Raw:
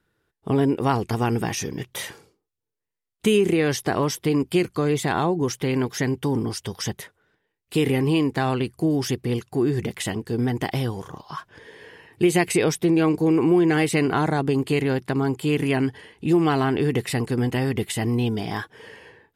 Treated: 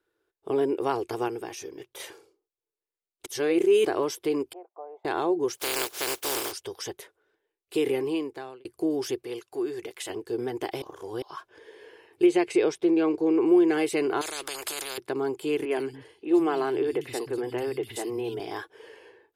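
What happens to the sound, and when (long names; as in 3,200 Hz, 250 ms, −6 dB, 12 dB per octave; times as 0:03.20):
0:01.28–0:02.00: clip gain −5 dB
0:03.26–0:03.85: reverse
0:04.53–0:05.05: flat-topped band-pass 750 Hz, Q 2.8
0:05.56–0:06.51: compressing power law on the bin magnitudes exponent 0.2
0:07.92–0:08.65: fade out
0:09.23–0:10.10: low-shelf EQ 490 Hz −9.5 dB
0:10.82–0:11.22: reverse
0:12.26–0:13.46: high-frequency loss of the air 76 metres
0:14.21–0:14.98: every bin compressed towards the loudest bin 10 to 1
0:15.65–0:18.40: three-band delay without the direct sound mids, highs, lows 60/130 ms, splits 200/3,100 Hz
whole clip: low shelf with overshoot 270 Hz −10 dB, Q 3; notch filter 1,900 Hz, Q 13; level −6.5 dB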